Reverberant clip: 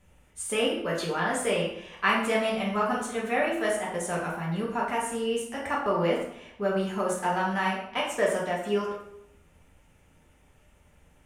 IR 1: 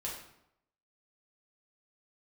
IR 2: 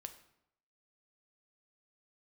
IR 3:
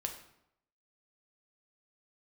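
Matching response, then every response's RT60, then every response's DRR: 1; 0.80, 0.75, 0.80 s; -5.0, 7.5, 3.0 dB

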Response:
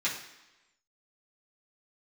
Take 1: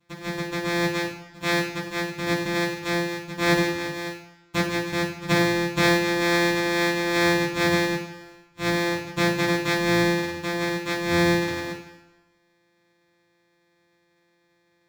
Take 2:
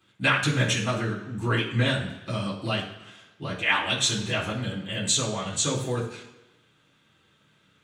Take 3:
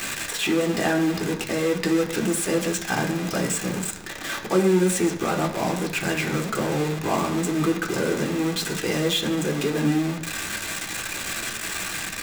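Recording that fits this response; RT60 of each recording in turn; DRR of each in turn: 2; 1.0, 1.0, 1.0 s; -18.0, -8.5, 1.5 dB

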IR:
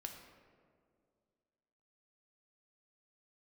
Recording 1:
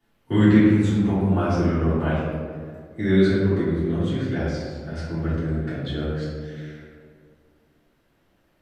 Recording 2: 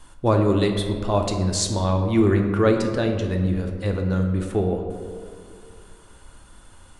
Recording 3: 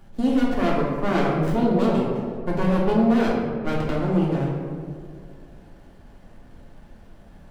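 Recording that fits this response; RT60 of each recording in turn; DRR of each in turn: 2; 2.2, 2.2, 2.2 s; -14.5, 3.0, -4.5 dB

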